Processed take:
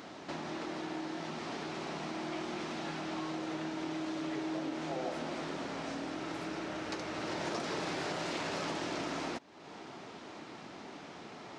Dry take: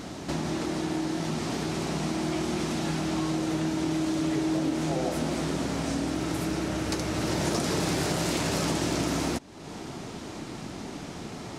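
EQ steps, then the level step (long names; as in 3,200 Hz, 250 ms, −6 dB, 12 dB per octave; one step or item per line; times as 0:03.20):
high-pass filter 880 Hz 6 dB per octave
head-to-tape spacing loss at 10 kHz 31 dB
high-shelf EQ 4,000 Hz +8.5 dB
0.0 dB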